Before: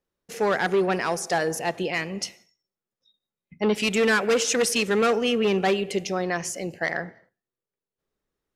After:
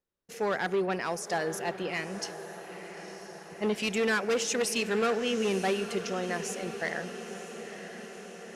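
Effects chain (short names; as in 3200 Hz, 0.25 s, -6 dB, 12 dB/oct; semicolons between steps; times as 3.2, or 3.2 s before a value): diffused feedback echo 0.962 s, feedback 64%, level -11.5 dB; gain -6.5 dB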